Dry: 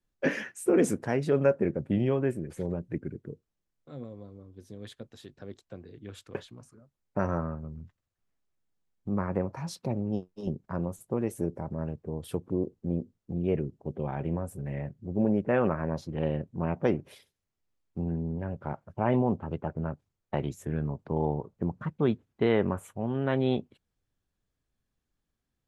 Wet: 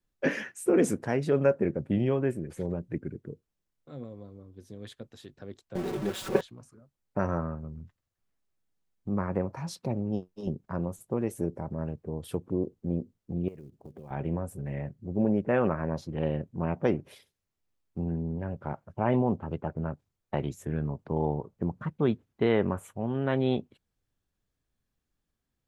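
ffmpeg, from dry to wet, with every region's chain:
-filter_complex "[0:a]asettb=1/sr,asplit=3[s0][s1][s2];[s0]atrim=end=5.754[s3];[s1]atrim=start=5.75:end=6.41,asetpts=PTS-STARTPTS,afade=t=in:d=0.004:c=qsin,afade=t=out:st=0.656:d=0.004:c=qsin,aeval=exprs='val(0)+0.5*0.0133*sgn(val(0))':c=same,equalizer=f=420:w=0.32:g=8,aecho=1:1:5.3:0.7,atrim=end_sample=29106[s4];[s2]atrim=start=6.406[s5];[s3][s4]acrossfade=d=0.004:c1=hsin:c2=qsin[s6];[s6][s5]acrossfade=d=0.004:c1=qsin:c2=hsin,asettb=1/sr,asplit=3[s7][s8][s9];[s7]atrim=end=13.484[s10];[s8]atrim=start=13.48:end=14.11,asetpts=PTS-STARTPTS,afade=t=in:d=0.004:c=qsin,afade=t=out:st=0.626:d=0.004:c=qsin,acrusher=bits=8:mode=log:mix=0:aa=0.000001,acompressor=threshold=0.00891:ratio=12:attack=3.2:release=140:knee=1:detection=peak[s11];[s9]atrim=start=14.106[s12];[s10][s11]acrossfade=d=0.004:c1=hsin:c2=qsin[s13];[s13][s12]acrossfade=d=0.004:c1=qsin:c2=hsin"

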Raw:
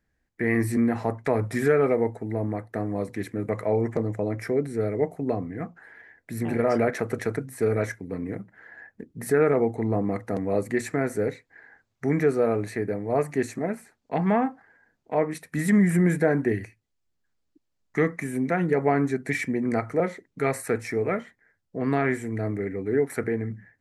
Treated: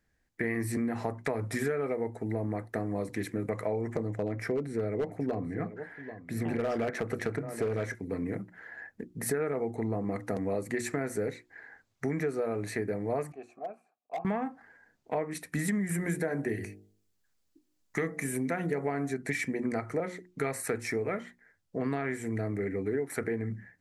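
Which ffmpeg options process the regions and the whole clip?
-filter_complex "[0:a]asettb=1/sr,asplit=3[s0][s1][s2];[s0]atrim=end=4.104[s3];[s1]atrim=start=4.1:end=7.95,asetpts=PTS-STARTPTS,afade=t=in:d=0.004:c=qsin,afade=t=out:st=3.846:d=0.004:c=qsin,aemphasis=mode=reproduction:type=cd,aecho=1:1:787:0.133,atrim=end_sample=169785,volume=7.5,asoftclip=hard,volume=0.133[s4];[s2]atrim=start=7.946[s5];[s3][s4]acrossfade=d=0.004:c1=hsin:c2=qsin[s6];[s6][s5]acrossfade=d=0.004:c1=qsin:c2=hsin,asettb=1/sr,asplit=3[s7][s8][s9];[s7]atrim=end=13.324[s10];[s8]atrim=start=13.32:end=14.25,asetpts=PTS-STARTPTS,afade=t=in:d=0.004:c=qsin,afade=t=out:st=0.926:d=0.004:c=qsin,asplit=3[s11][s12][s13];[s11]bandpass=f=730:t=q:w=8,volume=1[s14];[s12]bandpass=f=1090:t=q:w=8,volume=0.501[s15];[s13]bandpass=f=2440:t=q:w=8,volume=0.355[s16];[s14][s15][s16]amix=inputs=3:normalize=0,equalizer=f=2700:t=o:w=2.2:g=-5.5,volume=29.9,asoftclip=hard,volume=0.0335[s17];[s9]atrim=start=14.246[s18];[s10][s17]acrossfade=d=0.004:c1=hsin:c2=qsin[s19];[s19][s18]acrossfade=d=0.004:c1=qsin:c2=hsin,asettb=1/sr,asplit=3[s20][s21][s22];[s20]atrim=end=15.874[s23];[s21]atrim=start=15.87:end=19.14,asetpts=PTS-STARTPTS,afade=t=in:d=0.004:c=qsin,afade=t=out:st=3.266:d=0.004:c=qsin,highshelf=f=8000:g=8,bandreject=f=50.65:t=h:w=4,bandreject=f=101.3:t=h:w=4,bandreject=f=151.95:t=h:w=4,bandreject=f=202.6:t=h:w=4,bandreject=f=253.25:t=h:w=4,bandreject=f=303.9:t=h:w=4,bandreject=f=354.55:t=h:w=4,bandreject=f=405.2:t=h:w=4,bandreject=f=455.85:t=h:w=4,bandreject=f=506.5:t=h:w=4,bandreject=f=557.15:t=h:w=4,bandreject=f=607.8:t=h:w=4,bandreject=f=658.45:t=h:w=4,bandreject=f=709.1:t=h:w=4,bandreject=f=759.75:t=h:w=4,bandreject=f=810.4:t=h:w=4[s24];[s22]atrim=start=19.136[s25];[s23][s24]acrossfade=d=0.004:c1=hsin:c2=qsin[s26];[s26][s25]acrossfade=d=0.004:c1=qsin:c2=hsin,equalizer=f=7600:w=0.36:g=3.5,bandreject=f=60:t=h:w=6,bandreject=f=120:t=h:w=6,bandreject=f=180:t=h:w=6,bandreject=f=240:t=h:w=6,bandreject=f=300:t=h:w=6,bandreject=f=360:t=h:w=6,acompressor=threshold=0.0398:ratio=6"

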